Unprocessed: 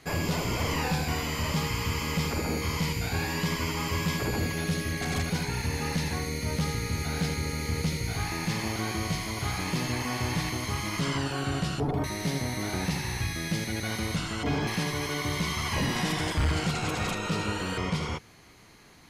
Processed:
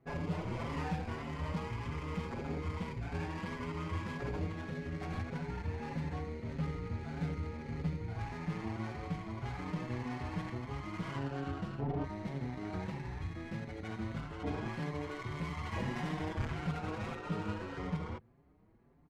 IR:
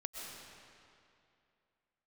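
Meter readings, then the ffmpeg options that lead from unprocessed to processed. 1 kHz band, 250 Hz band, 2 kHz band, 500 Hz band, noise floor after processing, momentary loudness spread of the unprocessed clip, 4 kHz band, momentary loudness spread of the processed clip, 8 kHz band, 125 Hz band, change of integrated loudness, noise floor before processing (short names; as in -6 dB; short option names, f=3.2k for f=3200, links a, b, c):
-9.0 dB, -8.0 dB, -13.0 dB, -8.5 dB, -55 dBFS, 3 LU, -19.5 dB, 4 LU, under -25 dB, -8.0 dB, -10.0 dB, -44 dBFS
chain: -filter_complex "[0:a]adynamicsmooth=sensitivity=3:basefreq=680,asplit=2[a][b];[b]adelay=5.6,afreqshift=1.7[c];[a][c]amix=inputs=2:normalize=1,volume=-5dB"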